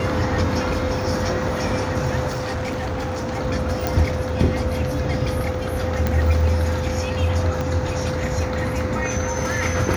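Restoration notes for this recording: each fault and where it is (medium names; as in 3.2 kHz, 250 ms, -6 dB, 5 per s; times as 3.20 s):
whine 510 Hz -27 dBFS
2.27–3.38 s: clipped -22 dBFS
3.87 s: pop
6.07 s: pop -9 dBFS
7.61 s: pop -12 dBFS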